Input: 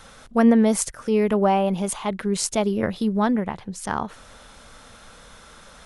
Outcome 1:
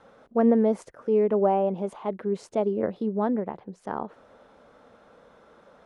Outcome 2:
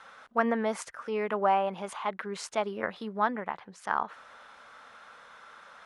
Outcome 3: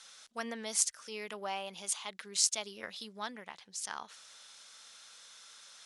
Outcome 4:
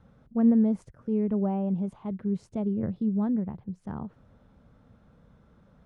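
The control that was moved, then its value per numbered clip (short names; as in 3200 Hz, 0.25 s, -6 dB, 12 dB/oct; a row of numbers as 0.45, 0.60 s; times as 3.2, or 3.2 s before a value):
band-pass, frequency: 450, 1300, 5500, 130 Hz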